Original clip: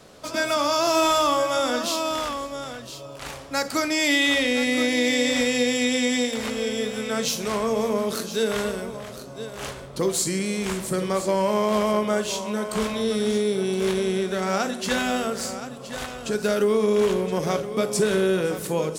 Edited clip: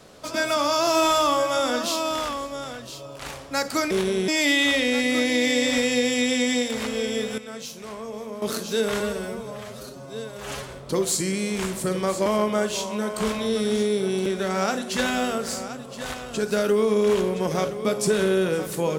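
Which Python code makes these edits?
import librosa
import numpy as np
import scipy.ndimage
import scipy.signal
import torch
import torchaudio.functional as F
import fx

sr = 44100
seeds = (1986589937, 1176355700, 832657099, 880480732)

y = fx.edit(x, sr, fx.clip_gain(start_s=7.01, length_s=1.04, db=-11.0),
    fx.stretch_span(start_s=8.63, length_s=1.12, factor=1.5),
    fx.cut(start_s=11.33, length_s=0.48),
    fx.move(start_s=13.81, length_s=0.37, to_s=3.91), tone=tone)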